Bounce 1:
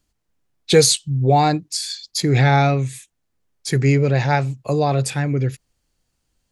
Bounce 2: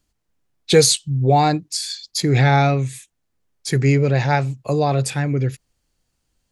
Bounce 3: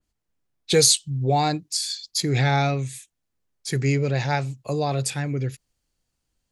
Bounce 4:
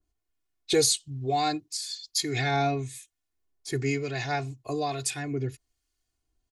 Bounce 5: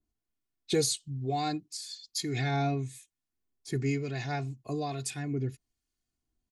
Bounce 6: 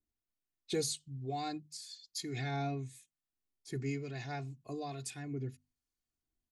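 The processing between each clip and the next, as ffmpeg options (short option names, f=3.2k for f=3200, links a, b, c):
-af anull
-af "adynamicequalizer=threshold=0.02:dfrequency=2700:dqfactor=0.7:tfrequency=2700:tqfactor=0.7:attack=5:release=100:ratio=0.375:range=3:mode=boostabove:tftype=highshelf,volume=-6dB"
-filter_complex "[0:a]aecho=1:1:2.8:0.8,acrossover=split=1100[a][b];[a]aeval=exprs='val(0)*(1-0.5/2+0.5/2*cos(2*PI*1.1*n/s))':c=same[c];[b]aeval=exprs='val(0)*(1-0.5/2-0.5/2*cos(2*PI*1.1*n/s))':c=same[d];[c][d]amix=inputs=2:normalize=0,volume=-3.5dB"
-af "equalizer=f=190:w=1.7:g=14.5,volume=-6.5dB"
-af "bandreject=f=50:t=h:w=6,bandreject=f=100:t=h:w=6,bandreject=f=150:t=h:w=6,bandreject=f=200:t=h:w=6,bandreject=f=250:t=h:w=6,volume=-7dB"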